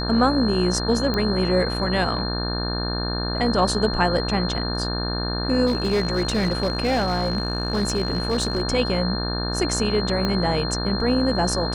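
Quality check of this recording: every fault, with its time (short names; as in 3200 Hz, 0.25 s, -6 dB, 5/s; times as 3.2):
buzz 60 Hz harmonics 30 -27 dBFS
tone 4200 Hz -29 dBFS
1.14 pop -12 dBFS
5.66–8.62 clipped -16.5 dBFS
10.25 pop -11 dBFS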